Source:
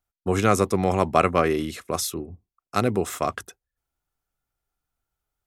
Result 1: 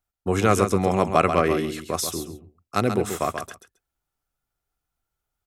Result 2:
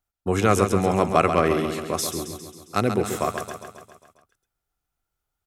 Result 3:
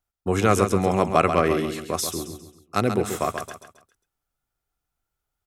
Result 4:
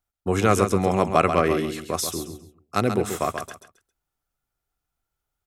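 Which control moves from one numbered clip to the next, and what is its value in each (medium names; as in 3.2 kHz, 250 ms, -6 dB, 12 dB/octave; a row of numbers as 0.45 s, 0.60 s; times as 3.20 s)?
feedback delay, feedback: 15%, 59%, 37%, 25%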